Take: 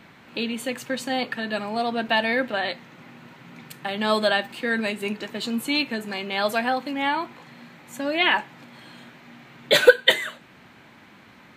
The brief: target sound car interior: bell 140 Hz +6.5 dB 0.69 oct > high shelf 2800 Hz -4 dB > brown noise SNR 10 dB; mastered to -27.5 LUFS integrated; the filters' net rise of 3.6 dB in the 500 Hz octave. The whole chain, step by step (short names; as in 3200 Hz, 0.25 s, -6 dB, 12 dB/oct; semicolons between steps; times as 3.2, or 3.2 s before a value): bell 140 Hz +6.5 dB 0.69 oct; bell 500 Hz +4 dB; high shelf 2800 Hz -4 dB; brown noise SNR 10 dB; gain -5 dB